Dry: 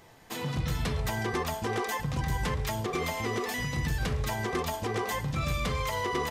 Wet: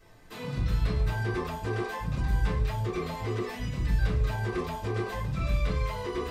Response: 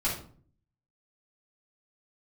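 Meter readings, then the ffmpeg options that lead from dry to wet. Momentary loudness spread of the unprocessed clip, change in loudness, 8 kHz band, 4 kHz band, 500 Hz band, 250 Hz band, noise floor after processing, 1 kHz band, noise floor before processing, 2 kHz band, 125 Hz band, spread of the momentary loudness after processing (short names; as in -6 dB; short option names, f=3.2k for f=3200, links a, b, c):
1 LU, +0.5 dB, -11.0 dB, -6.0 dB, -1.0 dB, 0.0 dB, -45 dBFS, -4.0 dB, -44 dBFS, -3.5 dB, +2.5 dB, 5 LU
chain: -filter_complex "[0:a]acrossover=split=4300[a][b];[b]acompressor=threshold=-48dB:ratio=4:attack=1:release=60[c];[a][c]amix=inputs=2:normalize=0[d];[1:a]atrim=start_sample=2205,afade=t=out:st=0.17:d=0.01,atrim=end_sample=7938,asetrate=79380,aresample=44100[e];[d][e]afir=irnorm=-1:irlink=0,volume=-6dB"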